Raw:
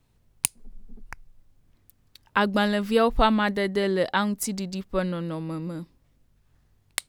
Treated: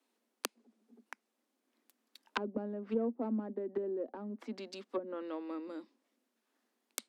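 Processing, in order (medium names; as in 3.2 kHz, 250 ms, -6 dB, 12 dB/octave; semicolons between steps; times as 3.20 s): self-modulated delay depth 0.24 ms; steep high-pass 220 Hz 96 dB/octave; low-pass that closes with the level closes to 340 Hz, closed at -23 dBFS; trim -6.5 dB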